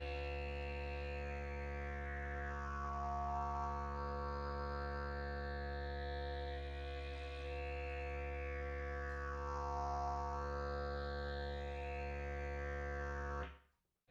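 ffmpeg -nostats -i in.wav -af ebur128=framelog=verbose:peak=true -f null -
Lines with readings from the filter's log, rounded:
Integrated loudness:
  I:         -44.0 LUFS
  Threshold: -54.1 LUFS
Loudness range:
  LRA:         2.1 LU
  Threshold: -63.9 LUFS
  LRA low:   -45.2 LUFS
  LRA high:  -43.1 LUFS
True peak:
  Peak:      -30.6 dBFS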